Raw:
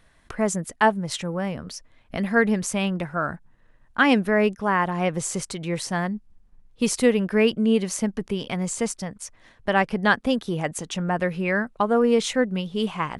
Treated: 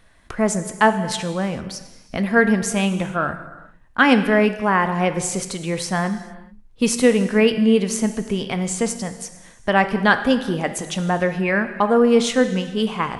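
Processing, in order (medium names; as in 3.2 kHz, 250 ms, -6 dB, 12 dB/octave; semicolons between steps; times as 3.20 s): gated-style reverb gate 470 ms falling, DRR 8.5 dB; trim +3.5 dB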